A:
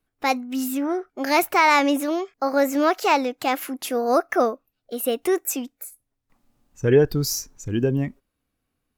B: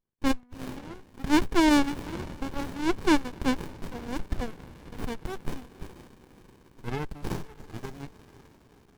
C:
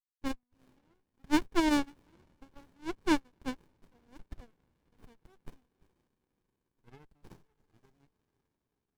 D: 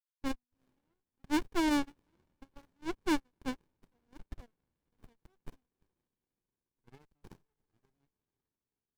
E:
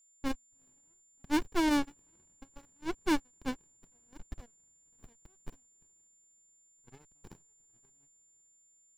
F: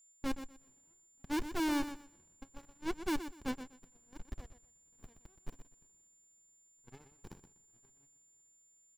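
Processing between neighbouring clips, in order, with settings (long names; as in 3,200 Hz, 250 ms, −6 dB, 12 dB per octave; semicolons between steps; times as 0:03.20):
high-pass filter 1,000 Hz 12 dB per octave; feedback delay with all-pass diffusion 534 ms, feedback 53%, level −13.5 dB; windowed peak hold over 65 samples
expander for the loud parts 2.5 to 1, over −33 dBFS; level −3.5 dB
leveller curve on the samples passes 2; level −7 dB
steady tone 7,200 Hz −65 dBFS; level +1.5 dB
gain into a clipping stage and back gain 32 dB; on a send: repeating echo 123 ms, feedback 20%, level −11 dB; on the sum: level +1 dB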